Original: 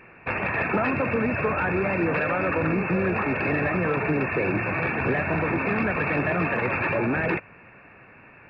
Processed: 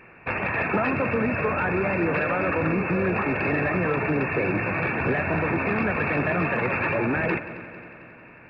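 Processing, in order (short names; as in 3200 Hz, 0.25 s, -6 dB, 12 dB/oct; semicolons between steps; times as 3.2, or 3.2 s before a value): multi-head echo 90 ms, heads second and third, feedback 61%, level -16.5 dB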